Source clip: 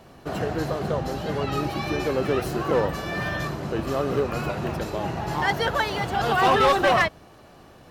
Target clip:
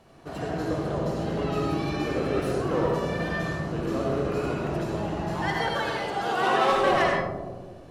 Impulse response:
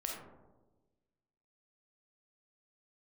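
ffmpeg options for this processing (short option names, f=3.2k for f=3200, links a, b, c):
-filter_complex "[0:a]asettb=1/sr,asplit=3[a][b][c];[a]atrim=end=5.354[d];[b]atrim=start=5.35:end=6.7,asetpts=PTS-STARTPTS,afade=t=in:d=0.004:c=qsin,afade=t=out:st=1.346:d=0.004:c=qsin,highpass=240[e];[c]atrim=start=6.696[f];[d][e]acrossfade=d=0.004:c1=hsin:c2=qsin[g];[g][f]acrossfade=d=0.004:c1=qsin:c2=hsin[h];[1:a]atrim=start_sample=2205,asetrate=22491,aresample=44100[i];[h][i]afir=irnorm=-1:irlink=0,volume=-8dB"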